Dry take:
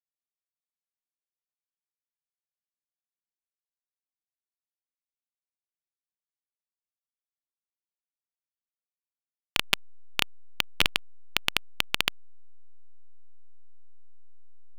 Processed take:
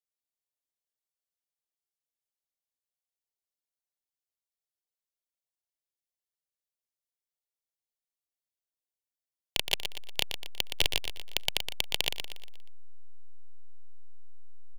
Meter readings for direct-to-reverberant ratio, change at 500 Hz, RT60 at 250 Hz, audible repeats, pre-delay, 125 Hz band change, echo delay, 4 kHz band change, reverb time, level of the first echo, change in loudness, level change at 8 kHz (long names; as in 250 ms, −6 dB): no reverb audible, 0.0 dB, no reverb audible, 4, no reverb audible, −2.0 dB, 119 ms, −1.5 dB, no reverb audible, −8.0 dB, −3.0 dB, +0.5 dB